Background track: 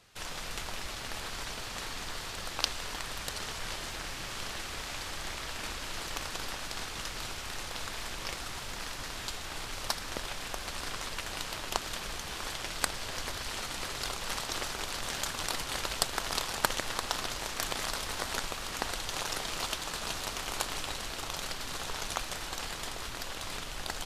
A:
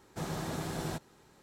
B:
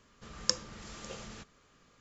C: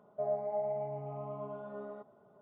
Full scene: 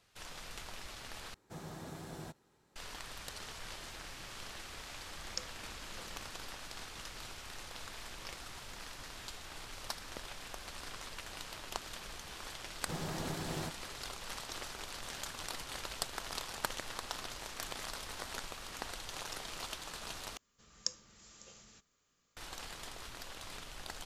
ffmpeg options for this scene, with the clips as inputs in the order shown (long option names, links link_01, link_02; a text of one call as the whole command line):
ffmpeg -i bed.wav -i cue0.wav -i cue1.wav -filter_complex "[1:a]asplit=2[link_01][link_02];[2:a]asplit=2[link_03][link_04];[0:a]volume=-8.5dB[link_05];[link_04]aemphasis=mode=production:type=75fm[link_06];[link_05]asplit=3[link_07][link_08][link_09];[link_07]atrim=end=1.344[link_10];[link_01]atrim=end=1.42,asetpts=PTS-STARTPTS,volume=-10dB[link_11];[link_08]atrim=start=2.756:end=20.374[link_12];[link_06]atrim=end=2,asetpts=PTS-STARTPTS,volume=-15.5dB[link_13];[link_09]atrim=start=22.366[link_14];[link_03]atrim=end=2,asetpts=PTS-STARTPTS,volume=-12dB,afade=type=in:duration=0.004:curve=hsin,afade=type=out:start_time=1.996:duration=0.004:curve=hsin,adelay=4880[link_15];[link_02]atrim=end=1.42,asetpts=PTS-STARTPTS,volume=-3.5dB,afade=type=in:duration=0.004:curve=hsin,afade=type=out:start_time=1.416:duration=0.004:curve=hsin,adelay=12720[link_16];[link_10][link_11]acrossfade=duration=0.004:curve1=hsin:curve2=hsin[link_17];[link_17][link_12]acrossfade=duration=0.004:curve1=hsin:curve2=hsin[link_18];[link_18][link_13]acrossfade=duration=0.004:curve1=hsin:curve2=hsin[link_19];[link_19][link_14]acrossfade=duration=0.004:curve1=hsin:curve2=hsin[link_20];[link_20][link_15][link_16]amix=inputs=3:normalize=0" out.wav